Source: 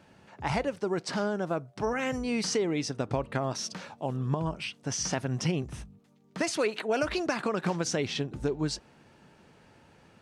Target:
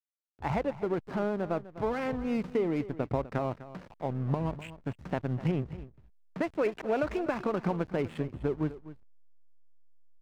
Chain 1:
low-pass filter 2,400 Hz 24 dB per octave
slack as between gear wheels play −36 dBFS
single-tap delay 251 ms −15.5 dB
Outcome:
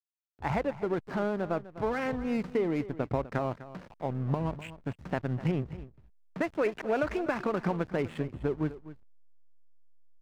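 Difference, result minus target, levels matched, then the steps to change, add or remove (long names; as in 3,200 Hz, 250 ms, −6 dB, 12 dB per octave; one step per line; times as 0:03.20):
2,000 Hz band +2.5 dB
add after low-pass filter: dynamic equaliser 1,700 Hz, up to −4 dB, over −46 dBFS, Q 2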